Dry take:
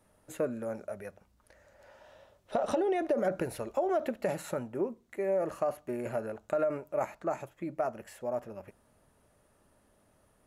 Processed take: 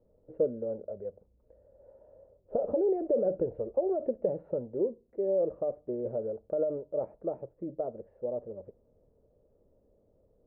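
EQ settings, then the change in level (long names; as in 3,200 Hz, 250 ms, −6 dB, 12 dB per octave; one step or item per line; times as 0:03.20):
low-pass with resonance 490 Hz, resonance Q 4.9
high-frequency loss of the air 230 metres
low-shelf EQ 83 Hz +11 dB
−5.5 dB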